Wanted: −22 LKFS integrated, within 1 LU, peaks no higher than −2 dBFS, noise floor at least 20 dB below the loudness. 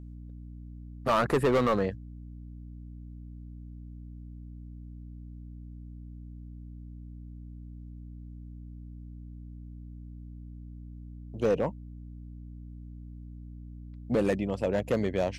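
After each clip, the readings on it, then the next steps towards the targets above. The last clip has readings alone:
share of clipped samples 0.8%; peaks flattened at −19.5 dBFS; mains hum 60 Hz; hum harmonics up to 300 Hz; level of the hum −41 dBFS; integrated loudness −28.5 LKFS; sample peak −19.5 dBFS; target loudness −22.0 LKFS
→ clipped peaks rebuilt −19.5 dBFS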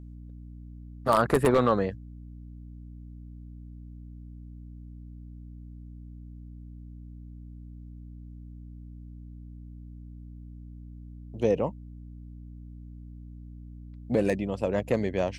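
share of clipped samples 0.0%; mains hum 60 Hz; hum harmonics up to 300 Hz; level of the hum −41 dBFS
→ hum removal 60 Hz, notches 5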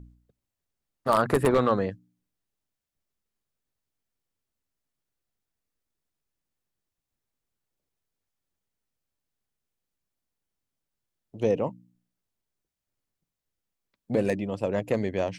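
mains hum none found; integrated loudness −26.5 LKFS; sample peak −10.0 dBFS; target loudness −22.0 LKFS
→ level +4.5 dB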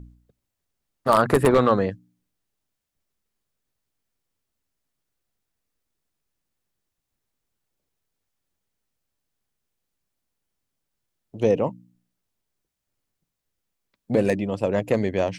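integrated loudness −22.0 LKFS; sample peak −5.5 dBFS; background noise floor −82 dBFS

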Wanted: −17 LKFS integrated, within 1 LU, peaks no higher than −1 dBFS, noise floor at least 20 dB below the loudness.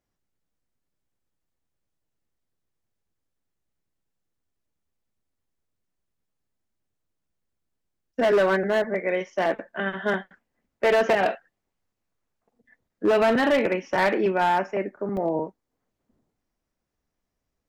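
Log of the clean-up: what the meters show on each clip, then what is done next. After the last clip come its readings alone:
share of clipped samples 1.2%; peaks flattened at −15.5 dBFS; number of dropouts 1; longest dropout 1.4 ms; integrated loudness −23.5 LKFS; sample peak −15.5 dBFS; target loudness −17.0 LKFS
→ clipped peaks rebuilt −15.5 dBFS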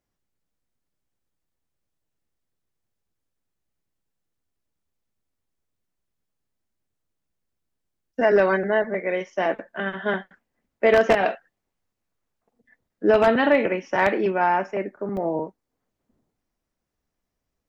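share of clipped samples 0.0%; number of dropouts 1; longest dropout 1.4 ms
→ repair the gap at 0:15.17, 1.4 ms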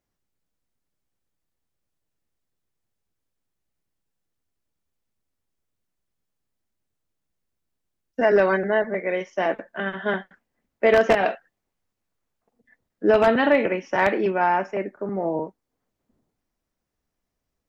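number of dropouts 0; integrated loudness −22.0 LKFS; sample peak −6.5 dBFS; target loudness −17.0 LKFS
→ level +5 dB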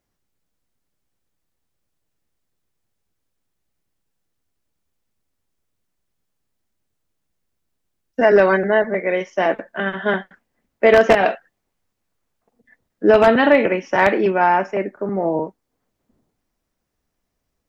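integrated loudness −17.0 LKFS; sample peak −1.5 dBFS; background noise floor −76 dBFS

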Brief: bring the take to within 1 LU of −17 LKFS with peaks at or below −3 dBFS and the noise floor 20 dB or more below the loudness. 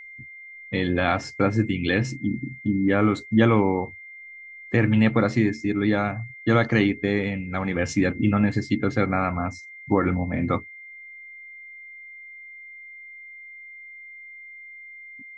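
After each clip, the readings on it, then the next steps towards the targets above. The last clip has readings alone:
interfering tone 2,100 Hz; level of the tone −40 dBFS; integrated loudness −23.5 LKFS; sample peak −5.5 dBFS; target loudness −17.0 LKFS
→ notch filter 2,100 Hz, Q 30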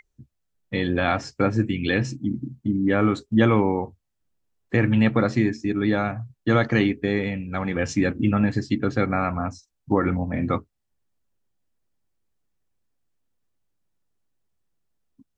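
interfering tone none found; integrated loudness −23.5 LKFS; sample peak −5.5 dBFS; target loudness −17.0 LKFS
→ level +6.5 dB
brickwall limiter −3 dBFS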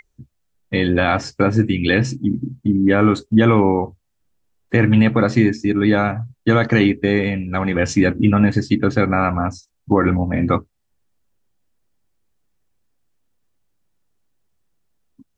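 integrated loudness −17.5 LKFS; sample peak −3.0 dBFS; background noise floor −70 dBFS

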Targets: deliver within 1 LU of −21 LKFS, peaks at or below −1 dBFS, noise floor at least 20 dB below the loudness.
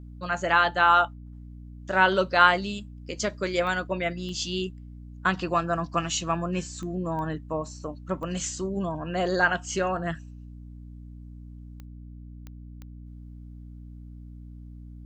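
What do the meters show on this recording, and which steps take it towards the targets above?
number of clicks 8; mains hum 60 Hz; hum harmonics up to 300 Hz; level of the hum −41 dBFS; integrated loudness −26.0 LKFS; sample peak −4.0 dBFS; target loudness −21.0 LKFS
→ click removal
hum removal 60 Hz, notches 5
level +5 dB
brickwall limiter −1 dBFS

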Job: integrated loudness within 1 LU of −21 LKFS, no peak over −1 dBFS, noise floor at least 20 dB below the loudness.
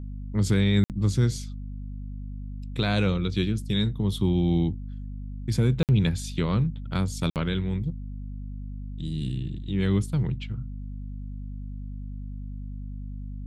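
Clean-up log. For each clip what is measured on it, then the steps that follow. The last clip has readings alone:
number of dropouts 3; longest dropout 58 ms; mains hum 50 Hz; hum harmonics up to 250 Hz; level of the hum −33 dBFS; integrated loudness −26.5 LKFS; sample peak −11.5 dBFS; target loudness −21.0 LKFS
→ repair the gap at 0:00.84/0:05.83/0:07.30, 58 ms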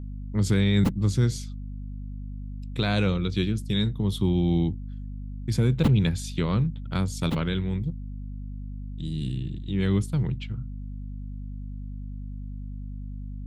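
number of dropouts 0; mains hum 50 Hz; hum harmonics up to 250 Hz; level of the hum −33 dBFS
→ hum removal 50 Hz, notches 5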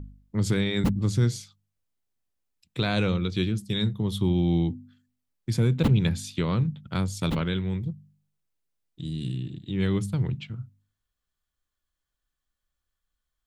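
mains hum none found; integrated loudness −27.0 LKFS; sample peak −10.0 dBFS; target loudness −21.0 LKFS
→ level +6 dB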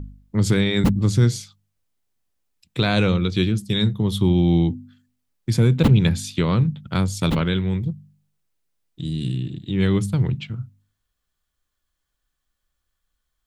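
integrated loudness −21.0 LKFS; sample peak −4.0 dBFS; background noise floor −78 dBFS

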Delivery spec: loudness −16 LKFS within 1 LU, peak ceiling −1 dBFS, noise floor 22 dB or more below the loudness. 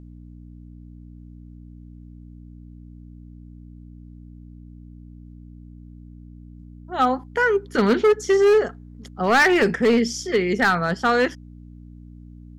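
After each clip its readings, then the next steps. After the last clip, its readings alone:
share of clipped samples 1.3%; peaks flattened at −12.0 dBFS; mains hum 60 Hz; hum harmonics up to 300 Hz; level of the hum −40 dBFS; integrated loudness −19.5 LKFS; sample peak −12.0 dBFS; target loudness −16.0 LKFS
→ clipped peaks rebuilt −12 dBFS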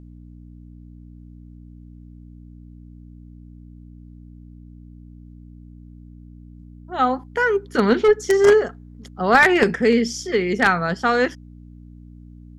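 share of clipped samples 0.0%; mains hum 60 Hz; hum harmonics up to 300 Hz; level of the hum −40 dBFS
→ hum removal 60 Hz, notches 5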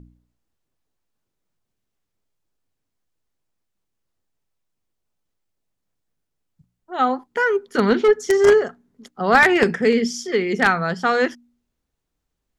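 mains hum none found; integrated loudness −18.5 LKFS; sample peak −2.5 dBFS; target loudness −16.0 LKFS
→ level +2.5 dB
brickwall limiter −1 dBFS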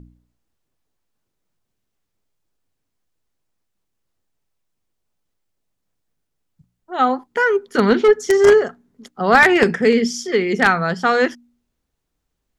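integrated loudness −16.0 LKFS; sample peak −1.0 dBFS; background noise floor −76 dBFS

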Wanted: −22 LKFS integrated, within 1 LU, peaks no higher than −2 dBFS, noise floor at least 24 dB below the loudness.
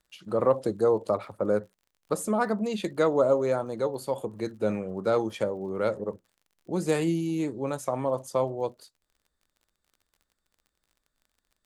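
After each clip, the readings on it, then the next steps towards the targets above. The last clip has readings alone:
crackle rate 43 per second; integrated loudness −28.0 LKFS; sample peak −11.0 dBFS; target loudness −22.0 LKFS
→ click removal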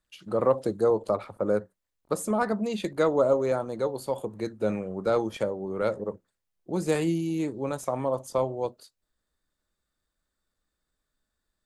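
crackle rate 0 per second; integrated loudness −28.0 LKFS; sample peak −11.0 dBFS; target loudness −22.0 LKFS
→ level +6 dB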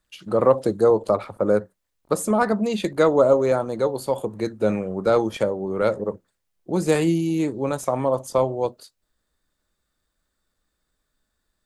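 integrated loudness −22.0 LKFS; sample peak −5.0 dBFS; background noise floor −77 dBFS

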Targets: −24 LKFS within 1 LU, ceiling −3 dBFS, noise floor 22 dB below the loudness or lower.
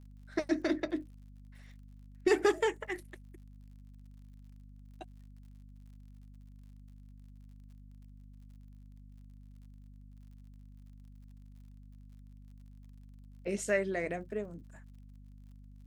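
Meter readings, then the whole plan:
crackle rate 42 per second; mains hum 50 Hz; hum harmonics up to 250 Hz; level of the hum −50 dBFS; integrated loudness −33.5 LKFS; sample peak −15.0 dBFS; target loudness −24.0 LKFS
→ click removal
hum removal 50 Hz, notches 5
level +9.5 dB

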